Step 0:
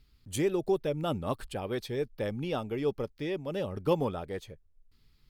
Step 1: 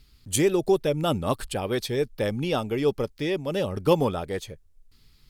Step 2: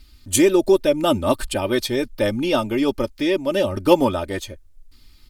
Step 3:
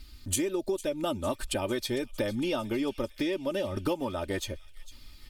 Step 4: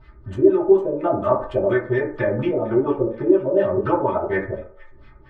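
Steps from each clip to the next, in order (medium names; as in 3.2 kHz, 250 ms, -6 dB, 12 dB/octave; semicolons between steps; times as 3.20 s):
peaking EQ 8.7 kHz +6.5 dB 2.2 oct; trim +6.5 dB
comb 3.3 ms, depth 75%; trim +4.5 dB
compression 10:1, threshold -27 dBFS, peak gain reduction 19 dB; feedback echo behind a high-pass 453 ms, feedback 64%, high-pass 2.7 kHz, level -15.5 dB
LFO low-pass sine 4.2 Hz 360–2000 Hz; reverberation RT60 0.55 s, pre-delay 4 ms, DRR -7 dB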